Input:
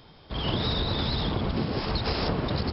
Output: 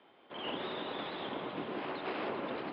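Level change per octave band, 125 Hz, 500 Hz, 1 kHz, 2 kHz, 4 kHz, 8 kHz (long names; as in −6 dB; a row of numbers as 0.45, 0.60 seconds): −25.0 dB, −7.0 dB, −6.0 dB, −5.5 dB, −13.5 dB, can't be measured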